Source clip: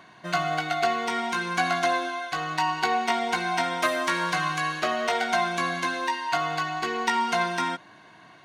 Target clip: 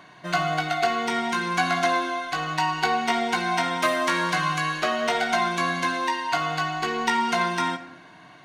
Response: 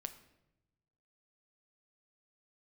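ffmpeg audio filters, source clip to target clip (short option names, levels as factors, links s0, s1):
-filter_complex "[0:a]acontrast=88[s0];[1:a]atrim=start_sample=2205[s1];[s0][s1]afir=irnorm=-1:irlink=0,volume=0.794"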